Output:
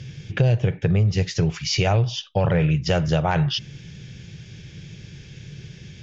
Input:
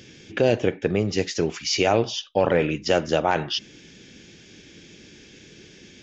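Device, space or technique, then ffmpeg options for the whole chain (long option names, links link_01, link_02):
jukebox: -af "lowpass=6800,lowshelf=frequency=190:width_type=q:width=3:gain=11,acompressor=threshold=-17dB:ratio=4,volume=1dB"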